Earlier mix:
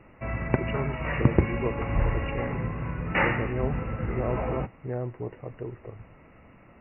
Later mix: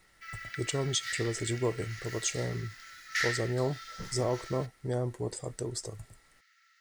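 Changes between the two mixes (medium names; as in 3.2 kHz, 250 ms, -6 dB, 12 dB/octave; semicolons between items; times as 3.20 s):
background: add rippled Chebyshev high-pass 1.3 kHz, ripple 9 dB; master: remove brick-wall FIR low-pass 2.9 kHz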